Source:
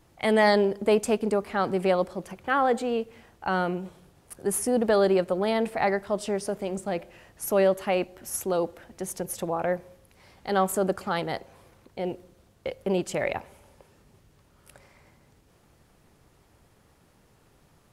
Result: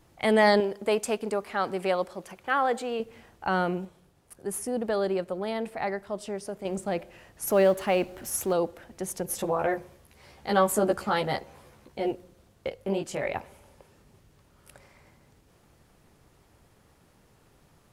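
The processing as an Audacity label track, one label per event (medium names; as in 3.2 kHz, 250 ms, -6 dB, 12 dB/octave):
0.600000	3.000000	bass shelf 380 Hz -9.5 dB
3.850000	6.650000	gain -6 dB
7.470000	8.530000	companding laws mixed up coded by mu
9.270000	12.110000	doubling 14 ms -2 dB
12.690000	13.340000	chorus 2.8 Hz, delay 18.5 ms, depth 2.5 ms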